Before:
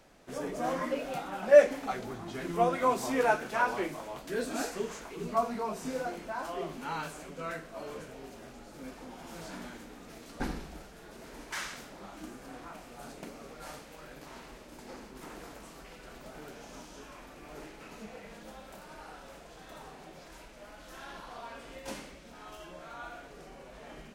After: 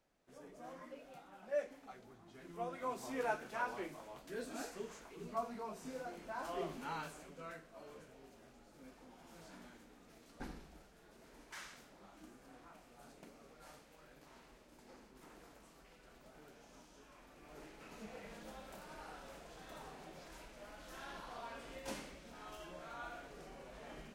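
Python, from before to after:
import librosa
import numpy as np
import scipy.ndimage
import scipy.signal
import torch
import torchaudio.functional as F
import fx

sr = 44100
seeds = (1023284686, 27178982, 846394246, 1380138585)

y = fx.gain(x, sr, db=fx.line((2.23, -19.5), (3.25, -11.0), (6.06, -11.0), (6.6, -4.0), (7.65, -13.0), (17.03, -13.0), (18.22, -4.0)))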